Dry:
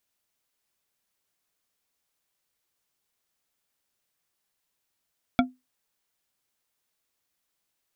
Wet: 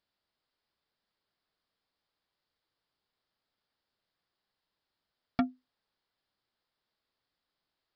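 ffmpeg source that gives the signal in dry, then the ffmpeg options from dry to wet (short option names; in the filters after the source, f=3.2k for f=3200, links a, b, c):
-f lavfi -i "aevalsrc='0.188*pow(10,-3*t/0.21)*sin(2*PI*254*t)+0.141*pow(10,-3*t/0.103)*sin(2*PI*700.3*t)+0.106*pow(10,-3*t/0.064)*sin(2*PI*1372.6*t)+0.0794*pow(10,-3*t/0.045)*sin(2*PI*2269*t)+0.0596*pow(10,-3*t/0.034)*sin(2*PI*3388.4*t)':d=0.89:s=44100"
-af "equalizer=f=2.5k:t=o:w=0.62:g=-6,aresample=11025,asoftclip=type=tanh:threshold=-20dB,aresample=44100"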